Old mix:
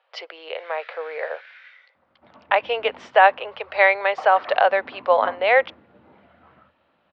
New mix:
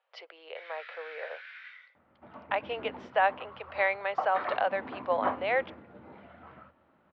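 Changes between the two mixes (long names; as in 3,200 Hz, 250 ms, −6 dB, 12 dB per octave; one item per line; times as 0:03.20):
speech −11.0 dB
second sound +3.0 dB
master: add high-frequency loss of the air 61 metres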